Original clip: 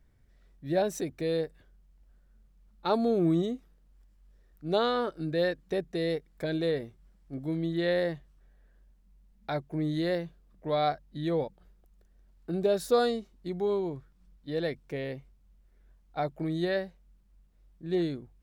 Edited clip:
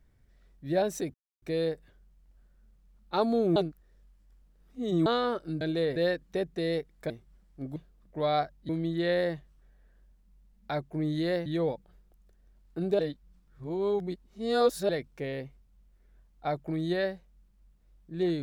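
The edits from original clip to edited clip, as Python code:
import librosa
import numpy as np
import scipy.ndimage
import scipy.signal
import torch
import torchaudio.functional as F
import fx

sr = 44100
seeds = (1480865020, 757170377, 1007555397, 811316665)

y = fx.edit(x, sr, fx.insert_silence(at_s=1.14, length_s=0.28),
    fx.reverse_span(start_s=3.28, length_s=1.5),
    fx.move(start_s=6.47, length_s=0.35, to_s=5.33),
    fx.move(start_s=10.25, length_s=0.93, to_s=7.48),
    fx.reverse_span(start_s=12.71, length_s=1.9), tone=tone)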